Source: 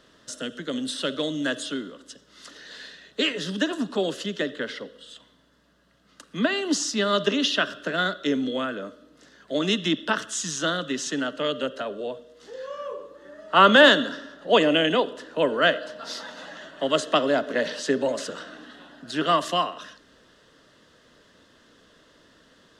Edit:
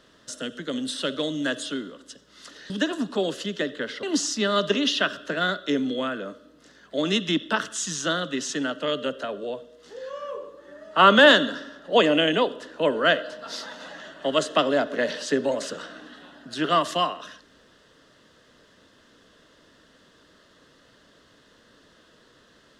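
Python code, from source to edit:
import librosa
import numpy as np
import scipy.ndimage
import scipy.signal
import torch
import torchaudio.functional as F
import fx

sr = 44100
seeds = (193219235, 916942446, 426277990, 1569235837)

y = fx.edit(x, sr, fx.cut(start_s=2.7, length_s=0.8),
    fx.cut(start_s=4.83, length_s=1.77), tone=tone)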